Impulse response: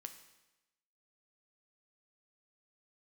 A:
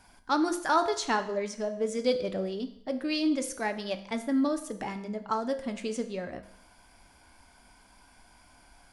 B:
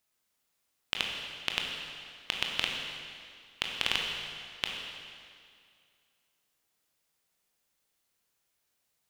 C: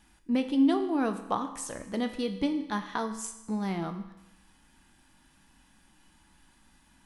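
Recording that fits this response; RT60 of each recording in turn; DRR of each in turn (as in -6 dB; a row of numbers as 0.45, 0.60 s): C; 0.70, 2.2, 1.0 s; 7.0, 0.0, 7.0 dB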